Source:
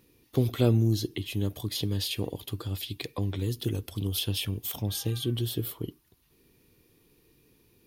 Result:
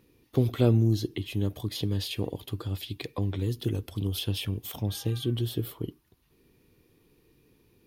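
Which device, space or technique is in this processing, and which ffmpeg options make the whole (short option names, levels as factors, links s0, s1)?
behind a face mask: -af "highshelf=f=3500:g=-7,volume=1.12"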